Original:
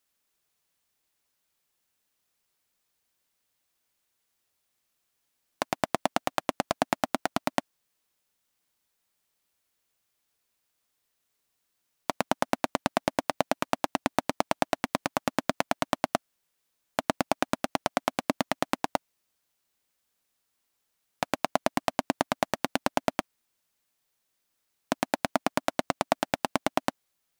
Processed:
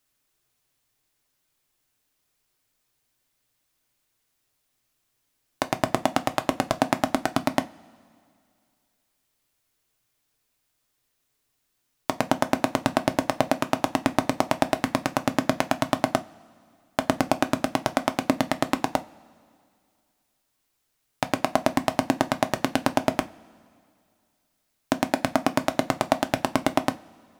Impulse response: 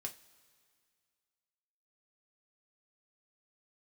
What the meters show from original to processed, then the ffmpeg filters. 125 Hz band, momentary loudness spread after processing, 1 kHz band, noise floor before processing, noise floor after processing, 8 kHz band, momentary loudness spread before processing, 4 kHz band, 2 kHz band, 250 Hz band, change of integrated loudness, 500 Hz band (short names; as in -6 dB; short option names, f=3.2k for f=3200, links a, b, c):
+7.5 dB, 5 LU, +3.0 dB, -78 dBFS, -75 dBFS, +3.0 dB, 4 LU, +3.0 dB, +3.0 dB, +6.5 dB, +4.5 dB, +4.5 dB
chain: -filter_complex "[0:a]asplit=2[a][b];[1:a]atrim=start_sample=2205,lowshelf=f=250:g=11[c];[b][c]afir=irnorm=-1:irlink=0,volume=2.5dB[d];[a][d]amix=inputs=2:normalize=0,volume=-2.5dB"